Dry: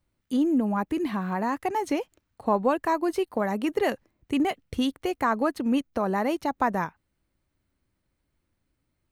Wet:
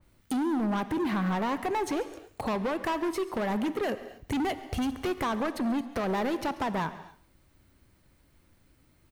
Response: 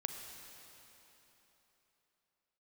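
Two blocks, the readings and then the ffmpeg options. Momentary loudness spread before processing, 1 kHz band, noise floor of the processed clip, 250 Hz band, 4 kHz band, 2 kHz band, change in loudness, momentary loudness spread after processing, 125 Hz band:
6 LU, −4.0 dB, −65 dBFS, −3.5 dB, −1.5 dB, −2.5 dB, −3.5 dB, 6 LU, +0.5 dB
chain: -filter_complex "[0:a]highshelf=frequency=12000:gain=3,acompressor=threshold=-34dB:ratio=6,asoftclip=type=hard:threshold=-39dB,aecho=1:1:137:0.106,asplit=2[link_01][link_02];[1:a]atrim=start_sample=2205,afade=type=out:start_time=0.33:duration=0.01,atrim=end_sample=14994[link_03];[link_02][link_03]afir=irnorm=-1:irlink=0,volume=0.5dB[link_04];[link_01][link_04]amix=inputs=2:normalize=0,adynamicequalizer=threshold=0.002:dfrequency=2900:dqfactor=0.7:tfrequency=2900:tqfactor=0.7:attack=5:release=100:ratio=0.375:range=2.5:mode=cutabove:tftype=highshelf,volume=7dB"

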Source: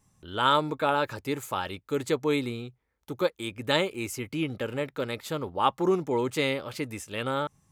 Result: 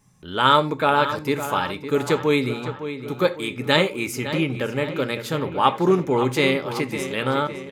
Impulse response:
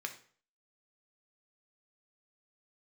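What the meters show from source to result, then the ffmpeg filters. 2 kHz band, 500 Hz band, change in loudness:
+8.0 dB, +6.5 dB, +7.0 dB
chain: -filter_complex "[0:a]asplit=2[link_01][link_02];[link_02]adelay=558,lowpass=frequency=3700:poles=1,volume=-10.5dB,asplit=2[link_03][link_04];[link_04]adelay=558,lowpass=frequency=3700:poles=1,volume=0.54,asplit=2[link_05][link_06];[link_06]adelay=558,lowpass=frequency=3700:poles=1,volume=0.54,asplit=2[link_07][link_08];[link_08]adelay=558,lowpass=frequency=3700:poles=1,volume=0.54,asplit=2[link_09][link_10];[link_10]adelay=558,lowpass=frequency=3700:poles=1,volume=0.54,asplit=2[link_11][link_12];[link_12]adelay=558,lowpass=frequency=3700:poles=1,volume=0.54[link_13];[link_01][link_03][link_05][link_07][link_09][link_11][link_13]amix=inputs=7:normalize=0,asplit=2[link_14][link_15];[1:a]atrim=start_sample=2205,atrim=end_sample=4410,lowshelf=frequency=200:gain=10[link_16];[link_15][link_16]afir=irnorm=-1:irlink=0,volume=0.5dB[link_17];[link_14][link_17]amix=inputs=2:normalize=0,volume=1dB"

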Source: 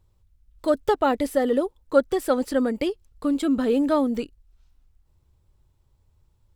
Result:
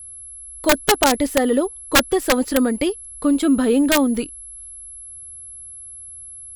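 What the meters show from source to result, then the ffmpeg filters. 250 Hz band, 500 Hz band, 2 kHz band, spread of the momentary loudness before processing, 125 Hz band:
+5.5 dB, +2.0 dB, +13.0 dB, 8 LU, can't be measured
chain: -af "aeval=exprs='val(0)+0.00891*sin(2*PI*11000*n/s)':channel_layout=same,adynamicequalizer=threshold=0.02:dfrequency=520:dqfactor=1.5:tfrequency=520:tqfactor=1.5:attack=5:release=100:ratio=0.375:range=2:mode=cutabove:tftype=bell,aeval=exprs='(mod(4.22*val(0)+1,2)-1)/4.22':channel_layout=same,volume=6dB"

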